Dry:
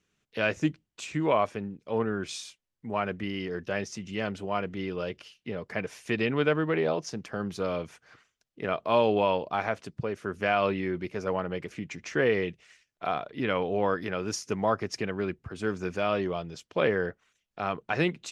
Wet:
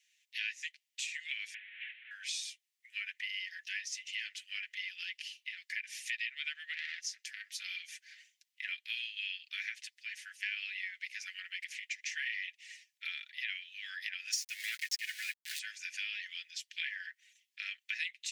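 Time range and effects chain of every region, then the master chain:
1.54–2.11 delta modulation 16 kbps, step -31 dBFS + compressor 10:1, threshold -34 dBFS + air absorption 270 m
6.73–7.6 bell 2600 Hz -5.5 dB 1.2 oct + doubler 18 ms -7.5 dB + core saturation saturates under 1600 Hz
14.33–15.59 comb 2.8 ms, depth 57% + sample leveller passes 2 + sample gate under -34.5 dBFS
whole clip: steep high-pass 1800 Hz 72 dB/oct; comb 5.9 ms, depth 47%; compressor 3:1, threshold -43 dBFS; gain +5.5 dB

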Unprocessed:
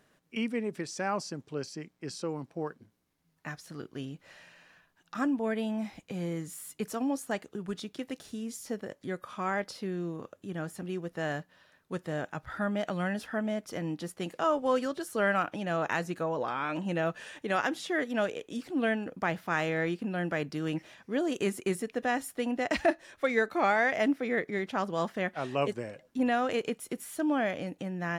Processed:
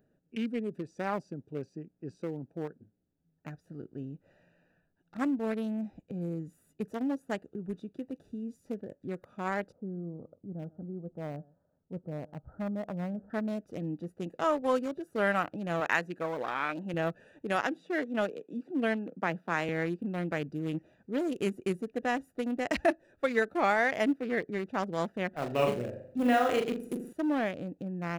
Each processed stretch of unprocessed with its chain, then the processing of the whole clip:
9.72–13.3 Chebyshev low-pass 1200 Hz, order 4 + bell 360 Hz -6 dB 0.65 oct + echo 0.126 s -22.5 dB
15.8–16.94 HPF 260 Hz 6 dB/oct + dynamic EQ 1900 Hz, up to +6 dB, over -45 dBFS, Q 1.1
17.61–19.69 steep high-pass 150 Hz + high shelf 11000 Hz -11.5 dB
25.31–27.13 G.711 law mismatch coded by mu + flutter echo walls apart 7 m, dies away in 0.59 s
whole clip: Wiener smoothing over 41 samples; high shelf 11000 Hz +12 dB

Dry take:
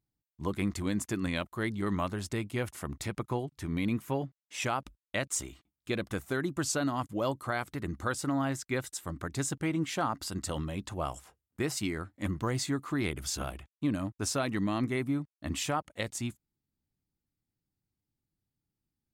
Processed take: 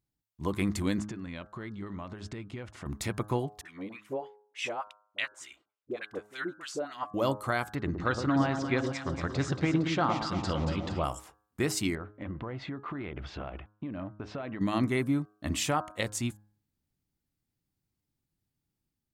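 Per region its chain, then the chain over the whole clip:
0.99–2.86 air absorption 130 m + compressor 10:1, threshold -38 dBFS
3.61–7.14 high shelf 3500 Hz +8.5 dB + wah 3.4 Hz 430–2900 Hz, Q 2.3 + dispersion highs, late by 43 ms, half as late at 690 Hz
7.75–11.04 LPF 5100 Hz 24 dB/oct + echo with dull and thin repeats by turns 0.115 s, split 1000 Hz, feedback 74%, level -5 dB
11.95–14.61 LPF 3000 Hz 24 dB/oct + bell 620 Hz +5.5 dB 1.3 oct + compressor 10:1, threshold -36 dBFS
whole clip: de-hum 104.5 Hz, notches 16; AGC gain up to 3 dB

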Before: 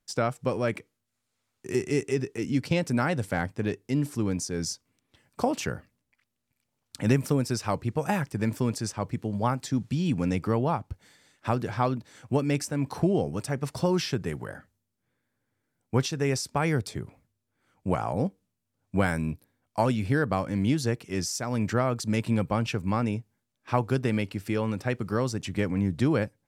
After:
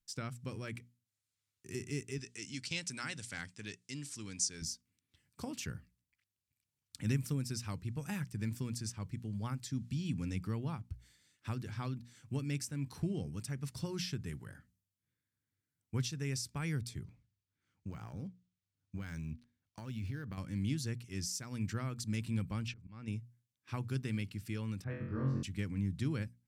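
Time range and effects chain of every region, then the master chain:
2.18–4.62 LPF 8300 Hz 24 dB/oct + tilt +3.5 dB/oct
17.04–20.38 compressor, threshold -26 dBFS + decimation joined by straight lines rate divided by 3×
22.68–23.08 LPF 5200 Hz + auto swell 0.349 s
24.84–25.43 LPF 1300 Hz + flutter echo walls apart 3.8 m, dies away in 0.76 s
whole clip: passive tone stack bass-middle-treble 6-0-2; notches 60/120/180/240 Hz; gain +7.5 dB

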